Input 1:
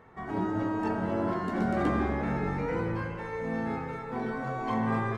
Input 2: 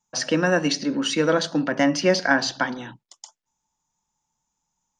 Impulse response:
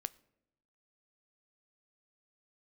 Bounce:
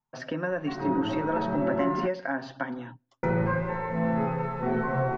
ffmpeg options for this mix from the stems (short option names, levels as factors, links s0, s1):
-filter_complex "[0:a]aecho=1:1:5.5:0.82,bandreject=f=184.7:t=h:w=4,bandreject=f=369.4:t=h:w=4,bandreject=f=554.1:t=h:w=4,acrusher=bits=9:dc=4:mix=0:aa=0.000001,adelay=500,volume=1.12,asplit=3[s0][s1][s2];[s0]atrim=end=2.07,asetpts=PTS-STARTPTS,afade=t=out:st=2.066:d=0.004:c=hsin[s3];[s1]atrim=start=2.07:end=3.23,asetpts=PTS-STARTPTS,volume=0[s4];[s2]atrim=start=3.23,asetpts=PTS-STARTPTS,afade=t=in:d=0.004:c=hsin[s5];[s3][s4][s5]concat=n=3:v=0:a=1,asplit=2[s6][s7];[s7]volume=0.473[s8];[1:a]acompressor=threshold=0.0794:ratio=6,volume=0.501,asplit=3[s9][s10][s11];[s10]volume=0.168[s12];[s11]apad=whole_len=250527[s13];[s6][s13]sidechaincompress=threshold=0.0178:ratio=8:attack=16:release=515[s14];[2:a]atrim=start_sample=2205[s15];[s8][s12]amix=inputs=2:normalize=0[s16];[s16][s15]afir=irnorm=-1:irlink=0[s17];[s14][s9][s17]amix=inputs=3:normalize=0,lowpass=1900,aecho=1:1:7.5:0.56"